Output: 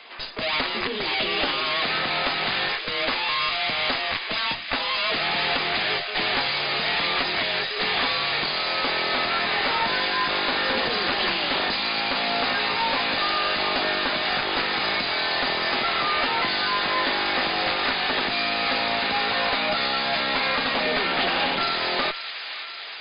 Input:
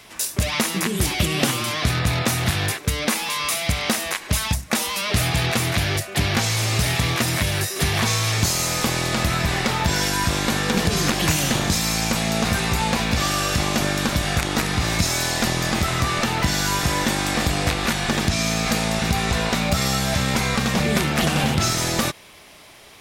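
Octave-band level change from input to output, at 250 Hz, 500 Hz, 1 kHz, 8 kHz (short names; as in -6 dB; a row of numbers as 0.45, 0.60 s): -10.0 dB, -1.5 dB, +1.0 dB, under -40 dB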